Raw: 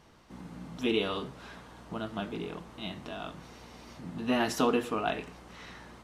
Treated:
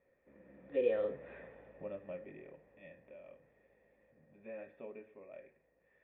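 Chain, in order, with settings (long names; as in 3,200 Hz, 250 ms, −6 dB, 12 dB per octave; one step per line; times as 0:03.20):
source passing by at 0:01.30, 41 m/s, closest 13 metres
formant resonators in series e
level +10 dB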